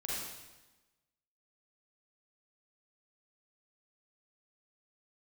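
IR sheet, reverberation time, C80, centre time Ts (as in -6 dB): 1.1 s, 0.5 dB, 94 ms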